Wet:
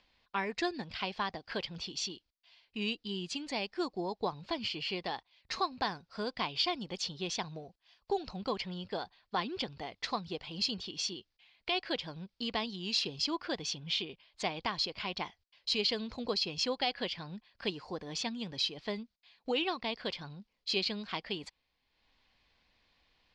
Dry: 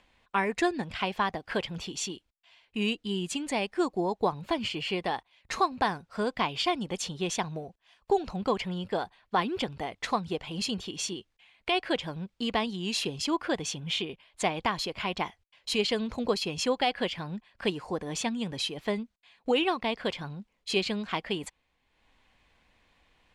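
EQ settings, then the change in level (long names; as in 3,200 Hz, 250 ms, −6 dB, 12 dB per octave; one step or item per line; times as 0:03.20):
low-pass with resonance 4,800 Hz, resonance Q 3.7
−7.5 dB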